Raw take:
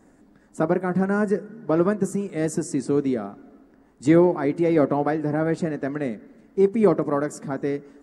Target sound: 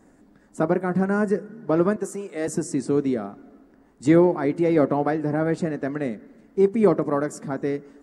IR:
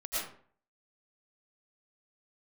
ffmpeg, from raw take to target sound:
-filter_complex "[0:a]asettb=1/sr,asplit=3[s0][s1][s2];[s0]atrim=end=1.964[s3];[s1]atrim=start=1.96:end=2.48,asetpts=PTS-STARTPTS,afade=t=in:d=0.004:c=qsin,afade=t=out:st=0.516:d=0.004:c=qsin,highpass=360[s4];[s2]atrim=start=2.476[s5];[s3][s4]acrossfade=d=0.004:c1=hsin:c2=qsin[s6];[s6][s5]acrossfade=d=0.004:c1=qsin:c2=hsin"

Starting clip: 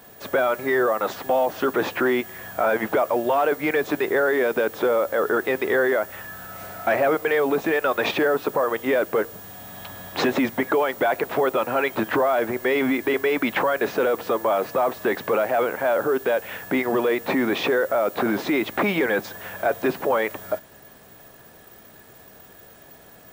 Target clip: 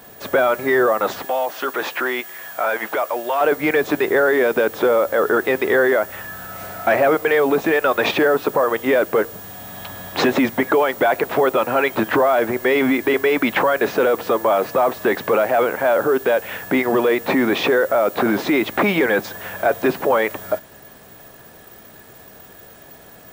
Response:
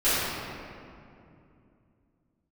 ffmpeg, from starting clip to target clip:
-filter_complex "[0:a]asettb=1/sr,asplit=3[s0][s1][s2];[s0]atrim=end=1.254[s3];[s1]atrim=start=1.25:end=3.41,asetpts=PTS-STARTPTS,afade=t=in:d=0.004:c=qsin,afade=t=out:st=2.156:d=0.004:c=qsin,highpass=f=990:p=1[s4];[s2]atrim=start=3.406[s5];[s3][s4]acrossfade=d=0.004:c1=hsin:c2=qsin[s6];[s6][s5]acrossfade=d=0.004:c1=qsin:c2=hsin,volume=1.68"

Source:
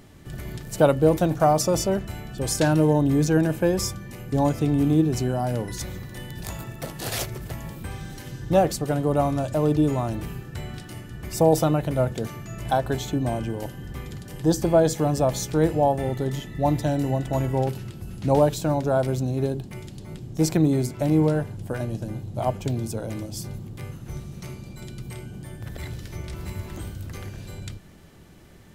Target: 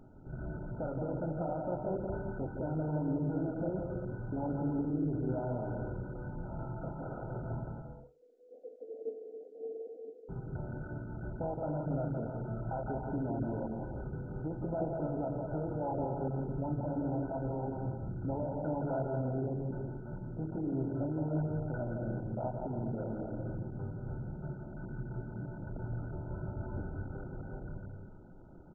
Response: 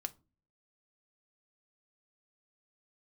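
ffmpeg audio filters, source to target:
-filter_complex "[0:a]acompressor=threshold=0.0794:ratio=6,asettb=1/sr,asplit=3[s0][s1][s2];[s0]atrim=end=7.644[s3];[s1]atrim=start=7.64:end=10.29,asetpts=PTS-STARTPTS,afade=t=in:d=0.004:c=qsin,afade=t=out:st=2.646:d=0.004:c=qsin,asuperpass=centerf=470:order=8:qfactor=6.8[s4];[s2]atrim=start=10.286[s5];[s3][s4]acrossfade=d=0.004:c1=hsin:c2=qsin[s6];[s6][s5]acrossfade=d=0.004:c1=qsin:c2=hsin[s7];[1:a]atrim=start_sample=2205,atrim=end_sample=3528[s8];[s7][s8]afir=irnorm=-1:irlink=0,alimiter=limit=0.0631:level=0:latency=1:release=95,aecho=1:1:170|280.5|352.3|399|429.4:0.631|0.398|0.251|0.158|0.1,flanger=delay=7.6:depth=6.5:regen=-75:speed=1.2:shape=sinusoidal" -ar 16000 -c:a mp2 -b:a 8k

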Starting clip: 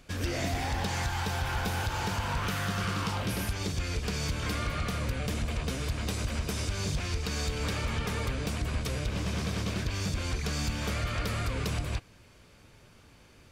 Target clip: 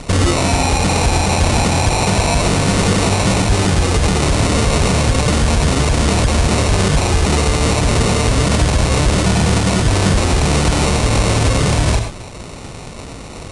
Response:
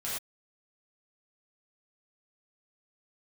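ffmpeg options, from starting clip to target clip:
-filter_complex "[0:a]acrusher=samples=27:mix=1:aa=0.000001,highshelf=f=3300:g=9,asplit=2[s0][s1];[1:a]atrim=start_sample=2205[s2];[s1][s2]afir=irnorm=-1:irlink=0,volume=0.2[s3];[s0][s3]amix=inputs=2:normalize=0,aresample=22050,aresample=44100,alimiter=level_in=23.7:limit=0.891:release=50:level=0:latency=1,volume=0.631"

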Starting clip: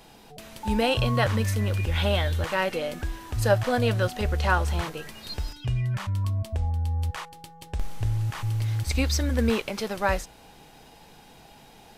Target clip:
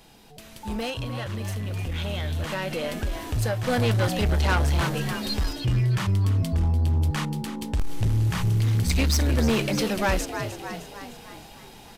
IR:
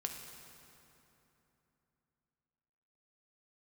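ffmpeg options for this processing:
-filter_complex "[0:a]asettb=1/sr,asplit=3[s0][s1][s2];[s0]atrim=end=0.904[s3];[s1]atrim=start=0.9:end=3.68,asetpts=PTS-STARTPTS,afade=t=in:d=0.004:c=qsin,afade=t=out:st=2.776:d=0.004:c=qsin,acompressor=threshold=0.0501:ratio=6[s4];[s2]atrim=start=3.676[s5];[s3][s4]acrossfade=d=0.004:c1=hsin:c2=qsin[s6];[s6][s5]acrossfade=d=0.004:c1=qsin:c2=hsin,equalizer=f=770:t=o:w=2.5:g=-4,asplit=7[s7][s8][s9][s10][s11][s12][s13];[s8]adelay=306,afreqshift=68,volume=0.251[s14];[s9]adelay=612,afreqshift=136,volume=0.138[s15];[s10]adelay=918,afreqshift=204,volume=0.0759[s16];[s11]adelay=1224,afreqshift=272,volume=0.0417[s17];[s12]adelay=1530,afreqshift=340,volume=0.0229[s18];[s13]adelay=1836,afreqshift=408,volume=0.0126[s19];[s7][s14][s15][s16][s17][s18][s19]amix=inputs=7:normalize=0,asoftclip=type=tanh:threshold=0.0531,dynaudnorm=f=590:g=9:m=2.51"

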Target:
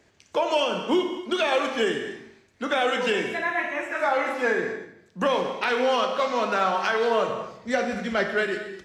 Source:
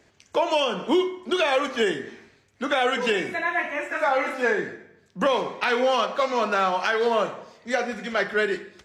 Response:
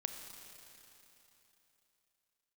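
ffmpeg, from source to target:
-filter_complex "[0:a]asettb=1/sr,asplit=3[s0][s1][s2];[s0]atrim=end=7.294[s3];[s1]atrim=start=7.29:end=8.26,asetpts=PTS-STARTPTS,afade=t=in:d=0.004:c=qsin,afade=t=out:st=0.966:d=0.004:c=qsin,lowshelf=f=210:g=11.5[s4];[s2]atrim=start=8.256[s5];[s3][s4]acrossfade=d=0.004:c1=hsin:c2=qsin[s6];[s6][s5]acrossfade=d=0.004:c1=qsin:c2=hsin[s7];[1:a]atrim=start_sample=2205,afade=t=out:st=0.31:d=0.01,atrim=end_sample=14112[s8];[s7][s8]afir=irnorm=-1:irlink=0"

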